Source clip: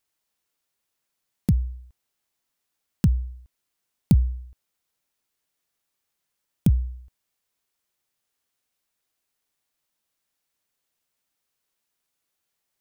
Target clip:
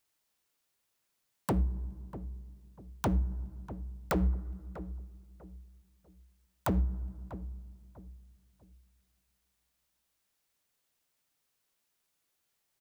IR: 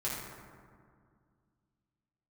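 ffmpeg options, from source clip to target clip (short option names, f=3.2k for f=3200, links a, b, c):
-filter_complex "[0:a]aeval=exprs='0.0708*(abs(mod(val(0)/0.0708+3,4)-2)-1)':c=same,asplit=2[a][b];[b]adelay=644,lowpass=f=920:p=1,volume=-12.5dB,asplit=2[c][d];[d]adelay=644,lowpass=f=920:p=1,volume=0.33,asplit=2[e][f];[f]adelay=644,lowpass=f=920:p=1,volume=0.33[g];[a][c][e][g]amix=inputs=4:normalize=0,asplit=2[h][i];[1:a]atrim=start_sample=2205,lowshelf=f=350:g=9.5[j];[i][j]afir=irnorm=-1:irlink=0,volume=-25.5dB[k];[h][k]amix=inputs=2:normalize=0"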